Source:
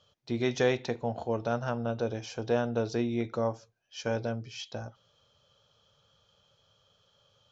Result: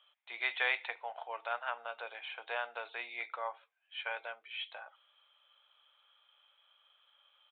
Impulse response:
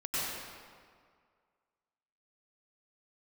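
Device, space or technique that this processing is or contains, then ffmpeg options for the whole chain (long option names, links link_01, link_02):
musical greeting card: -af "aresample=8000,aresample=44100,highpass=frequency=830:width=0.5412,highpass=frequency=830:width=1.3066,equalizer=frequency=2200:width_type=o:width=0.46:gain=8"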